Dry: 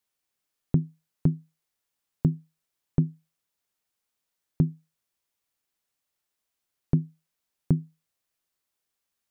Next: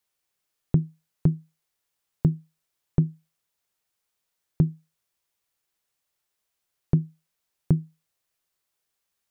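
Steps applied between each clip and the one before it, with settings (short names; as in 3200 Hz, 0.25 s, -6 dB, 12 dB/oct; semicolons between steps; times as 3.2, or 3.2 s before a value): bell 250 Hz -8 dB 0.29 oct; gain +2.5 dB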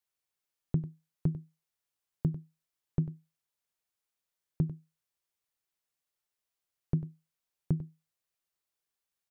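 echo 96 ms -14 dB; gain -8.5 dB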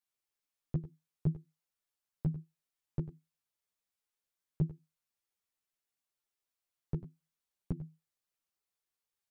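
ensemble effect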